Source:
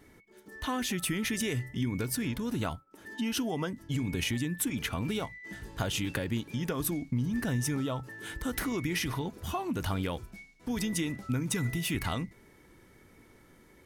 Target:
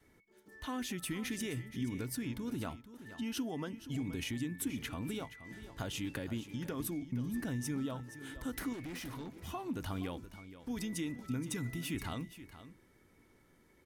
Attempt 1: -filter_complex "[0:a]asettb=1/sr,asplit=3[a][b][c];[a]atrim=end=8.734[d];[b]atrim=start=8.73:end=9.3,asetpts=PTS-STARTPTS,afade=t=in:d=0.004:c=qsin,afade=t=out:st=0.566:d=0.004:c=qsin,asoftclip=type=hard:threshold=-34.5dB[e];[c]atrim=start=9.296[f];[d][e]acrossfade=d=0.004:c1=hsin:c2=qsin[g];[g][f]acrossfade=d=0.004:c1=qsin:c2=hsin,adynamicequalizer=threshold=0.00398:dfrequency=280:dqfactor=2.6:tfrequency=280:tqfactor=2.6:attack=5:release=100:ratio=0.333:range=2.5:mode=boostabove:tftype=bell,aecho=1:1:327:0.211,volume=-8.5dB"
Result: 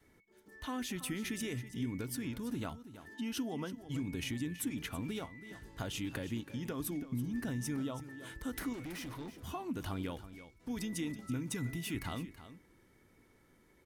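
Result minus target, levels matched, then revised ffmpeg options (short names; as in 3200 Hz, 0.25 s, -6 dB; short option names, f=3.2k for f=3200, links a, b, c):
echo 0.147 s early
-filter_complex "[0:a]asettb=1/sr,asplit=3[a][b][c];[a]atrim=end=8.734[d];[b]atrim=start=8.73:end=9.3,asetpts=PTS-STARTPTS,afade=t=in:d=0.004:c=qsin,afade=t=out:st=0.566:d=0.004:c=qsin,asoftclip=type=hard:threshold=-34.5dB[e];[c]atrim=start=9.296[f];[d][e]acrossfade=d=0.004:c1=hsin:c2=qsin[g];[g][f]acrossfade=d=0.004:c1=qsin:c2=hsin,adynamicequalizer=threshold=0.00398:dfrequency=280:dqfactor=2.6:tfrequency=280:tqfactor=2.6:attack=5:release=100:ratio=0.333:range=2.5:mode=boostabove:tftype=bell,aecho=1:1:474:0.211,volume=-8.5dB"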